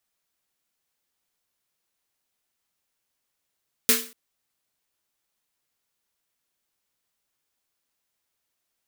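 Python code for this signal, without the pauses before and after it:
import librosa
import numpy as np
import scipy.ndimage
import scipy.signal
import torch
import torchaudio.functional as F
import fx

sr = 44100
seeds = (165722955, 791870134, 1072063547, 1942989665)

y = fx.drum_snare(sr, seeds[0], length_s=0.24, hz=240.0, second_hz=450.0, noise_db=9.5, noise_from_hz=1200.0, decay_s=0.38, noise_decay_s=0.37)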